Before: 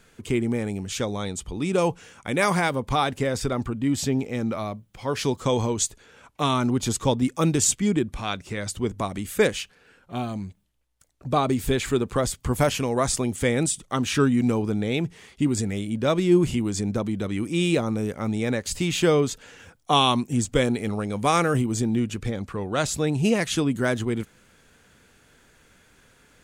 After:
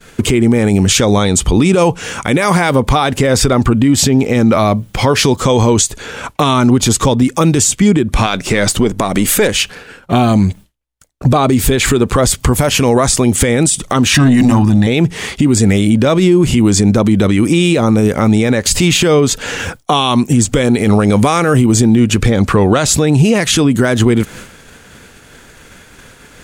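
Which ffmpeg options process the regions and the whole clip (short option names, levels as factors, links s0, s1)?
-filter_complex "[0:a]asettb=1/sr,asplit=3[s0][s1][s2];[s0]atrim=end=8.264[s3];[s1]atrim=start=8.26:end=9.49,asetpts=PTS-STARTPTS,afade=t=in:d=0.004:c=qsin,afade=t=out:st=1.226:d=0.004:c=qsin,aeval=exprs='if(lt(val(0),0),0.708*val(0),val(0))':c=same,equalizer=f=75:t=o:w=0.98:g=-12.5[s4];[s2]atrim=start=9.486[s5];[s3][s4]acrossfade=d=0.004:c1=hsin:c2=qsin[s6];[s6][s5]acrossfade=d=0.004:c1=qsin:c2=hsin,asettb=1/sr,asplit=3[s7][s8][s9];[s7]atrim=end=14.144[s10];[s8]atrim=start=14.14:end=14.87,asetpts=PTS-STARTPTS,afade=t=in:d=0.004:c=qsin,afade=t=out:st=0.726:d=0.004:c=qsin,bandreject=f=60:t=h:w=6,bandreject=f=120:t=h:w=6,bandreject=f=180:t=h:w=6,bandreject=f=240:t=h:w=6,bandreject=f=300:t=h:w=6,bandreject=f=360:t=h:w=6,bandreject=f=420:t=h:w=6,bandreject=f=480:t=h:w=6,bandreject=f=540:t=h:w=6,bandreject=f=600:t=h:w=6,aecho=1:1:1.1:0.93,atrim=end_sample=32193,aeval=exprs='(tanh(6.31*val(0)+0.2)-tanh(0.2))/6.31':c=same[s11];[s9]atrim=start=14.866[s12];[s10][s11]acrossfade=d=0.004:c1=hsin:c2=qsin[s13];[s13][s12]acrossfade=d=0.004:c1=qsin:c2=hsin,agate=range=0.0224:threshold=0.00355:ratio=3:detection=peak,acompressor=threshold=0.0251:ratio=5,alimiter=level_in=23.7:limit=0.891:release=50:level=0:latency=1,volume=0.891"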